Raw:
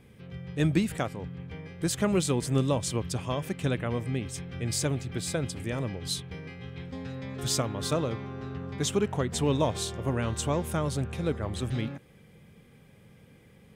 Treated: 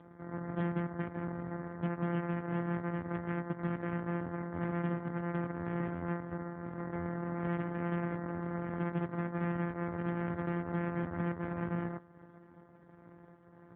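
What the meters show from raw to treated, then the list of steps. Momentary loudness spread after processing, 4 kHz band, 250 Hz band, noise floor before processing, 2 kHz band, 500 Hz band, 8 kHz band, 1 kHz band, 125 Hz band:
5 LU, under -25 dB, -4.0 dB, -56 dBFS, -3.5 dB, -8.0 dB, under -40 dB, -3.5 dB, -6.5 dB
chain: sorted samples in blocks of 256 samples; steep low-pass 1.9 kHz 48 dB/octave; compression 4:1, threshold -32 dBFS, peak gain reduction 11 dB; one-sided clip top -33.5 dBFS, bottom -26.5 dBFS; trim +2.5 dB; AMR-NB 5.9 kbps 8 kHz

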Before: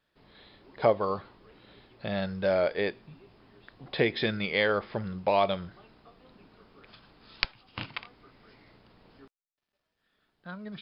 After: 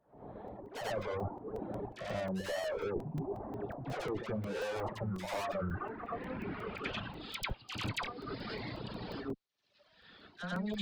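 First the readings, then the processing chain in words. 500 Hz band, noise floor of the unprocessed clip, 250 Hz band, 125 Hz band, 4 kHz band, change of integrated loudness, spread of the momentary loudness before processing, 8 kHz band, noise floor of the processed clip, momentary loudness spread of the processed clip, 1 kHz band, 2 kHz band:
-8.5 dB, -83 dBFS, -3.5 dB, -1.0 dB, -7.0 dB, -10.0 dB, 15 LU, no reading, -69 dBFS, 7 LU, -7.0 dB, -8.0 dB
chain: dynamic bell 200 Hz, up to -4 dB, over -41 dBFS, Q 1.1; low-pass sweep 750 Hz -> 4.3 kHz, 4.49–7.82 s; high-pass 43 Hz 12 dB/octave; tilt shelf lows +4 dB, about 1.4 kHz; level rider gain up to 9.5 dB; valve stage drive 28 dB, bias 0.5; phase dispersion lows, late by 67 ms, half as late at 1.2 kHz; reverse echo 90 ms -7.5 dB; reverse; compression 8:1, threshold -41 dBFS, peak gain reduction 16 dB; reverse; reverb removal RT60 1.3 s; crackling interface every 0.18 s, samples 128, zero, from 0.48 s; trim +8.5 dB

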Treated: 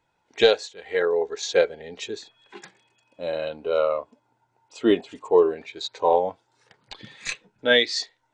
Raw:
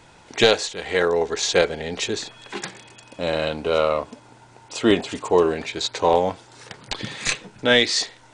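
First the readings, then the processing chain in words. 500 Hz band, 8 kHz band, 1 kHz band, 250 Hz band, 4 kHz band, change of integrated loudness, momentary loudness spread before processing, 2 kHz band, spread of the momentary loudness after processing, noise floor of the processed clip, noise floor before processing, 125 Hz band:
-1.0 dB, no reading, -3.5 dB, -4.0 dB, -4.5 dB, -2.0 dB, 15 LU, -3.5 dB, 15 LU, -72 dBFS, -50 dBFS, -12.0 dB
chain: bass shelf 350 Hz -5.5 dB; spectral contrast expander 1.5:1

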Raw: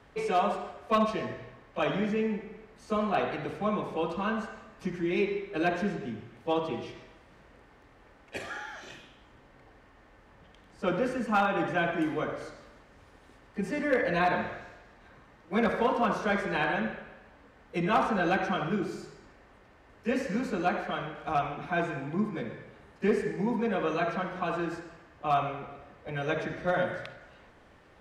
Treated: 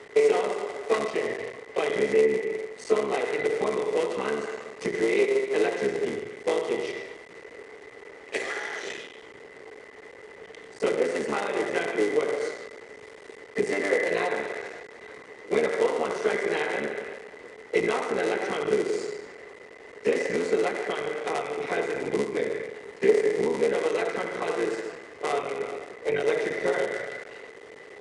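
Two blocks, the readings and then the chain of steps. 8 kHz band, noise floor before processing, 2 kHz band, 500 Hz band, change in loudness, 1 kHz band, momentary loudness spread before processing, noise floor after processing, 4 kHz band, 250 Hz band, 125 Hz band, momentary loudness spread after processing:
+11.5 dB, -58 dBFS, +3.0 dB, +7.0 dB, +3.0 dB, -3.0 dB, 16 LU, -47 dBFS, +3.5 dB, -2.0 dB, -7.5 dB, 20 LU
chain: cycle switcher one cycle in 3, muted; high-pass 320 Hz 6 dB/octave; treble shelf 3.5 kHz +8 dB; compression 3:1, threshold -40 dBFS, peak gain reduction 14 dB; small resonant body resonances 430/2000 Hz, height 18 dB, ringing for 40 ms; resampled via 22.05 kHz; trim +7.5 dB

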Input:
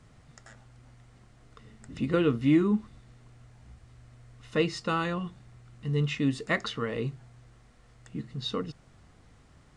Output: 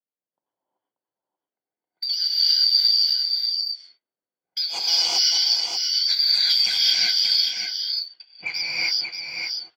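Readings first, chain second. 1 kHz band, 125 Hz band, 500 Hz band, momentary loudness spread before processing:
-4.0 dB, under -25 dB, -17.0 dB, 16 LU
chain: four frequency bands reordered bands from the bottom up 4321; level-controlled noise filter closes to 2.2 kHz, open at -25 dBFS; frequency weighting A; level-controlled noise filter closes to 500 Hz, open at -25 dBFS; gate -49 dBFS, range -24 dB; dynamic bell 4.3 kHz, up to +7 dB, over -35 dBFS, Q 1.3; in parallel at +1 dB: peak limiter -19 dBFS, peak gain reduction 13.5 dB; on the sum: compression 12:1, threshold -23 dBFS, peak gain reduction 15 dB; saturation -15.5 dBFS, distortion -24 dB; rotary cabinet horn 7.5 Hz; on a send: delay 584 ms -5.5 dB; on the sum: gated-style reverb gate 410 ms rising, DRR -7 dB; trim +3.5 dB

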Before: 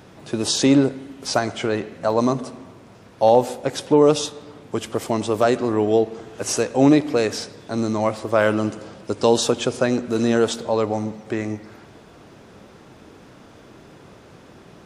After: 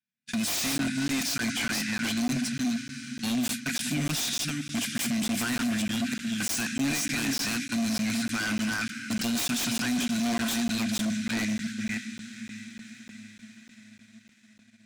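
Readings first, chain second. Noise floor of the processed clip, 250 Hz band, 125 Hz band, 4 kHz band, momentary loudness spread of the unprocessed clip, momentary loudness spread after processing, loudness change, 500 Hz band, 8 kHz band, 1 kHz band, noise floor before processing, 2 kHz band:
-58 dBFS, -6.0 dB, -7.5 dB, -1.0 dB, 14 LU, 10 LU, -7.5 dB, -24.0 dB, 0.0 dB, -14.0 dB, -47 dBFS, +0.5 dB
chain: chunks repeated in reverse 307 ms, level -6 dB; Chebyshev band-stop 240–1500 Hz, order 5; gate -38 dBFS, range -44 dB; high-pass 180 Hz 12 dB/octave; tone controls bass -7 dB, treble +2 dB; in parallel at +3 dB: compressor with a negative ratio -35 dBFS, ratio -1; on the sum: echo that smears into a reverb 580 ms, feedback 60%, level -14 dB; wavefolder -22.5 dBFS; small resonant body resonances 290/700/2400 Hz, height 9 dB; waveshaping leveller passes 1; crackling interface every 0.30 s, samples 512, zero, from 0.78 s; trim -5 dB

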